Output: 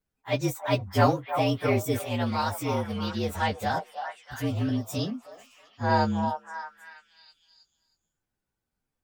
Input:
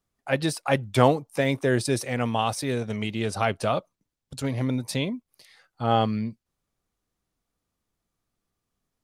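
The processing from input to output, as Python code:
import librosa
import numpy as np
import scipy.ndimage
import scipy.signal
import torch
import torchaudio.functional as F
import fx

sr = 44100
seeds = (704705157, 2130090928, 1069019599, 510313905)

y = fx.partial_stretch(x, sr, pct=115)
y = fx.echo_stepped(y, sr, ms=318, hz=860.0, octaves=0.7, feedback_pct=70, wet_db=-5)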